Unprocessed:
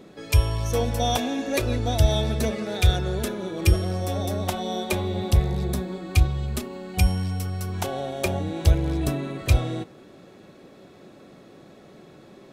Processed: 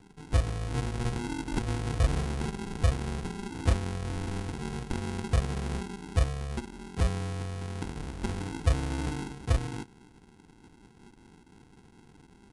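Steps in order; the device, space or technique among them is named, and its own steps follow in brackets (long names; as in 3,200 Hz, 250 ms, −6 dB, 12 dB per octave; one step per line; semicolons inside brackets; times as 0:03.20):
crushed at another speed (tape speed factor 2×; decimation without filtering 37×; tape speed factor 0.5×)
level −7 dB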